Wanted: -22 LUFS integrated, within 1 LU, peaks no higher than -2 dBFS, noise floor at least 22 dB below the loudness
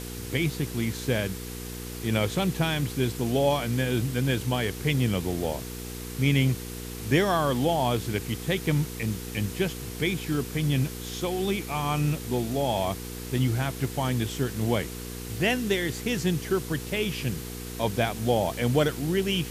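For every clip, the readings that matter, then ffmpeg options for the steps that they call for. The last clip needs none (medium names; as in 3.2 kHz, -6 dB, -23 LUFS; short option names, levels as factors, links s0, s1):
hum 60 Hz; highest harmonic 480 Hz; hum level -36 dBFS; noise floor -37 dBFS; noise floor target -50 dBFS; loudness -27.5 LUFS; peak level -10.0 dBFS; loudness target -22.0 LUFS
-> -af "bandreject=f=60:t=h:w=4,bandreject=f=120:t=h:w=4,bandreject=f=180:t=h:w=4,bandreject=f=240:t=h:w=4,bandreject=f=300:t=h:w=4,bandreject=f=360:t=h:w=4,bandreject=f=420:t=h:w=4,bandreject=f=480:t=h:w=4"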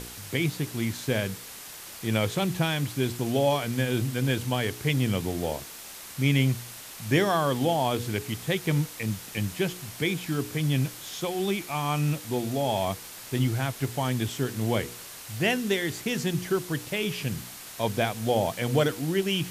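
hum not found; noise floor -43 dBFS; noise floor target -50 dBFS
-> -af "afftdn=nr=7:nf=-43"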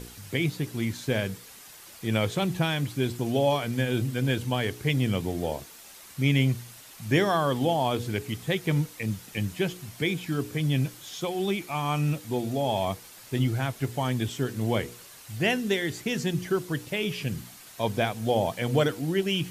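noise floor -48 dBFS; noise floor target -50 dBFS
-> -af "afftdn=nr=6:nf=-48"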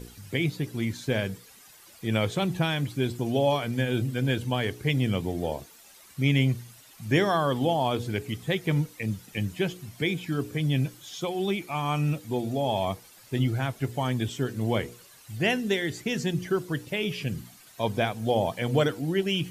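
noise floor -53 dBFS; loudness -28.0 LUFS; peak level -10.5 dBFS; loudness target -22.0 LUFS
-> -af "volume=2"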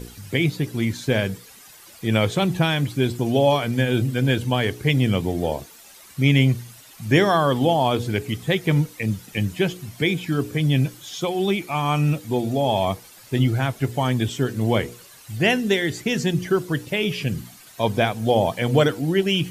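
loudness -22.0 LUFS; peak level -4.5 dBFS; noise floor -47 dBFS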